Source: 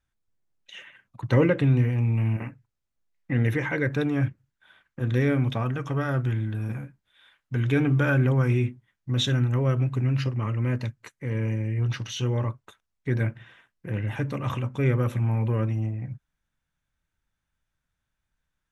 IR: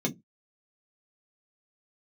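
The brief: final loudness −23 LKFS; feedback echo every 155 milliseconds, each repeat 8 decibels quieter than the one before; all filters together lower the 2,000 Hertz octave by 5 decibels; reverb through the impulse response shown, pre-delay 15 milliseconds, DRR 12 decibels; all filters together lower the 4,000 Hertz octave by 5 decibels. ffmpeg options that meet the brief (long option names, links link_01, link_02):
-filter_complex "[0:a]equalizer=frequency=2000:width_type=o:gain=-6,equalizer=frequency=4000:width_type=o:gain=-4,aecho=1:1:155|310|465|620|775:0.398|0.159|0.0637|0.0255|0.0102,asplit=2[link_01][link_02];[1:a]atrim=start_sample=2205,adelay=15[link_03];[link_02][link_03]afir=irnorm=-1:irlink=0,volume=-18.5dB[link_04];[link_01][link_04]amix=inputs=2:normalize=0,volume=1dB"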